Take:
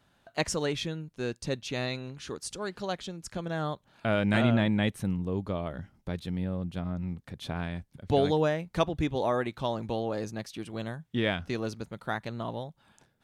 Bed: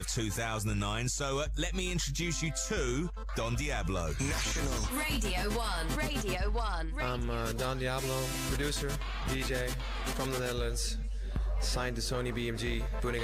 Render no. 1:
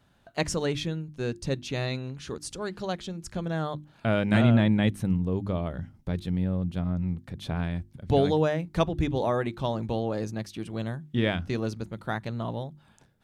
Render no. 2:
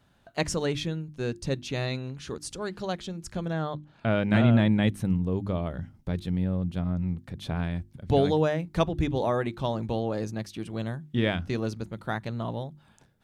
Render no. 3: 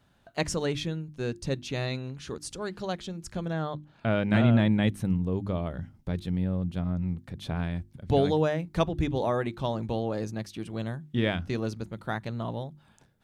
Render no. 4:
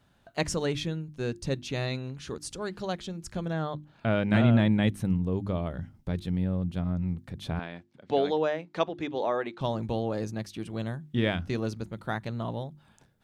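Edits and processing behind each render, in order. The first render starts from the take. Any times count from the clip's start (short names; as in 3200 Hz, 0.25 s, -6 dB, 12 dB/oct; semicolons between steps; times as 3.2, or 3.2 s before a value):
low shelf 260 Hz +7.5 dB; notches 50/100/150/200/250/300/350 Hz
3.53–4.53 air absorption 72 m
gain -1 dB
7.59–9.61 BPF 330–4900 Hz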